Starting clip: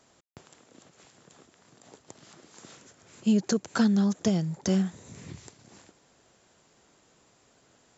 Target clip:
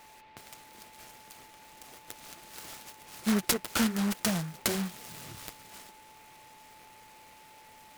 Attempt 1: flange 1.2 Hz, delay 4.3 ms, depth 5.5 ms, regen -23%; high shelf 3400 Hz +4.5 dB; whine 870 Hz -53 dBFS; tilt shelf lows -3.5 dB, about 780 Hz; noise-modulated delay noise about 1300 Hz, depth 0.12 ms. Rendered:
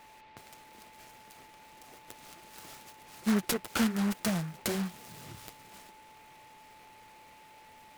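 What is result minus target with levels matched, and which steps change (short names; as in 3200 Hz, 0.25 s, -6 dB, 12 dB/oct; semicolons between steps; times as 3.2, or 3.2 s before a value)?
8000 Hz band -5.0 dB
change: high shelf 3400 Hz +11.5 dB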